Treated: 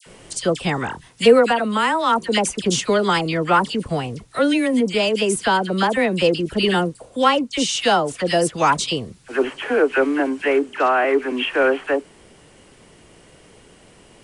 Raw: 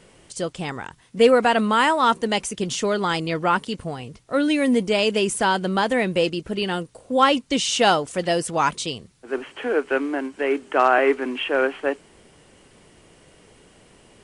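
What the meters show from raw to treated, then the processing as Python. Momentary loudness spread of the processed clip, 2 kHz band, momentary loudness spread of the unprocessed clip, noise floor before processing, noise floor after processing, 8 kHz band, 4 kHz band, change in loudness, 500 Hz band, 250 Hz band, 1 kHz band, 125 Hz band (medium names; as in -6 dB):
7 LU, +2.5 dB, 13 LU, -54 dBFS, -50 dBFS, +3.0 dB, +2.5 dB, +2.0 dB, +3.0 dB, +2.5 dB, +1.5 dB, +4.5 dB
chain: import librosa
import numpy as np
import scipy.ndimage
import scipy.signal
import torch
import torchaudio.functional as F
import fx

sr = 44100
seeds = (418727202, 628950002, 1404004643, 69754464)

y = fx.dispersion(x, sr, late='lows', ms=64.0, hz=1600.0)
y = fx.rider(y, sr, range_db=5, speed_s=0.5)
y = y * 10.0 ** (2.5 / 20.0)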